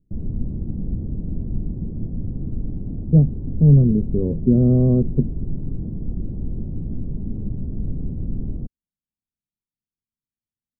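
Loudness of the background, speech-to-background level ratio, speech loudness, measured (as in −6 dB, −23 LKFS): −30.0 LKFS, 12.5 dB, −17.5 LKFS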